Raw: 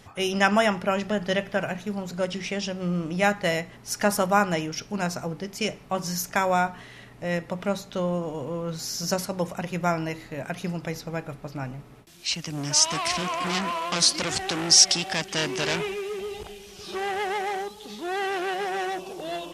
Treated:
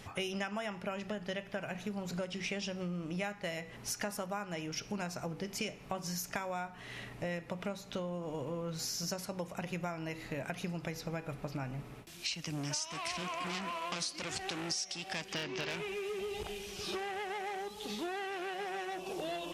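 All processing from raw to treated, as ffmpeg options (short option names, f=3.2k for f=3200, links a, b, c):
-filter_complex "[0:a]asettb=1/sr,asplit=3[a][b][c];[a]atrim=end=15.334[d];[b]atrim=start=15.33:end=15.74,asetpts=PTS-STARTPTS,afade=t=in:d=0.004:c=qsin,afade=t=out:st=0.406:d=0.004:c=qsin,lowpass=f=5.7k:w=0.5412,lowpass=f=5.7k:w=1.3066,aeval=exprs='0.178*(abs(mod(val(0)/0.178+3,4)-2)-1)':c=same[e];[c]atrim=start=15.736[f];[d][e]acrossfade=d=0.004:c1=hsin:c2=qsin[g];[g][f]acrossfade=d=0.004:c1=qsin:c2=hsin,acompressor=threshold=-35dB:ratio=12,equalizer=f=2.5k:t=o:w=0.48:g=3.5,bandreject=f=245.4:t=h:w=4,bandreject=f=490.8:t=h:w=4,bandreject=f=736.2:t=h:w=4,bandreject=f=981.6:t=h:w=4,bandreject=f=1.227k:t=h:w=4,bandreject=f=1.4724k:t=h:w=4,bandreject=f=1.7178k:t=h:w=4,bandreject=f=1.9632k:t=h:w=4,bandreject=f=2.2086k:t=h:w=4,bandreject=f=2.454k:t=h:w=4,bandreject=f=2.6994k:t=h:w=4,bandreject=f=2.9448k:t=h:w=4,bandreject=f=3.1902k:t=h:w=4,bandreject=f=3.4356k:t=h:w=4,bandreject=f=3.681k:t=h:w=4,bandreject=f=3.9264k:t=h:w=4,bandreject=f=4.1718k:t=h:w=4,bandreject=f=4.4172k:t=h:w=4,bandreject=f=4.6626k:t=h:w=4,bandreject=f=4.908k:t=h:w=4,bandreject=f=5.1534k:t=h:w=4,bandreject=f=5.3988k:t=h:w=4,bandreject=f=5.6442k:t=h:w=4,bandreject=f=5.8896k:t=h:w=4,bandreject=f=6.135k:t=h:w=4,bandreject=f=6.3804k:t=h:w=4,bandreject=f=6.6258k:t=h:w=4,bandreject=f=6.8712k:t=h:w=4,bandreject=f=7.1166k:t=h:w=4"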